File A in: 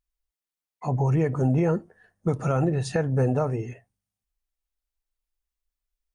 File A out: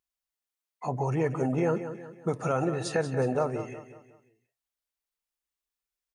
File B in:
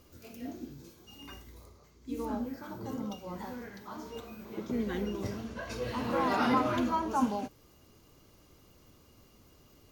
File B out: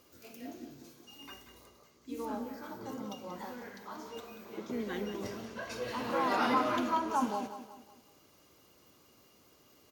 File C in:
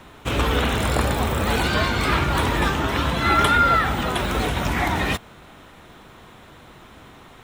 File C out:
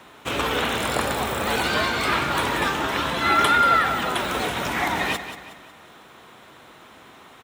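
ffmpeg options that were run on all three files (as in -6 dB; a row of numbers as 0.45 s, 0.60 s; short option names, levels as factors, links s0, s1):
-af "highpass=f=350:p=1,aecho=1:1:183|366|549|732:0.282|0.118|0.0497|0.0209"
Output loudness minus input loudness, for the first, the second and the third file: -4.5 LU, -1.5 LU, -1.0 LU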